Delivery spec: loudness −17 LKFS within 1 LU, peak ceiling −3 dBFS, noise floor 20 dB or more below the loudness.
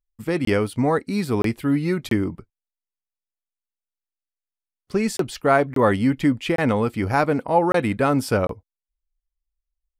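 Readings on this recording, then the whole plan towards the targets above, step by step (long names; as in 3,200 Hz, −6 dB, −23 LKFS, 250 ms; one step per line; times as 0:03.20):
number of dropouts 8; longest dropout 23 ms; integrated loudness −21.5 LKFS; sample peak −4.5 dBFS; target loudness −17.0 LKFS
→ repair the gap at 0:00.45/0:01.42/0:02.09/0:05.17/0:05.74/0:06.56/0:07.72/0:08.47, 23 ms
level +4.5 dB
brickwall limiter −3 dBFS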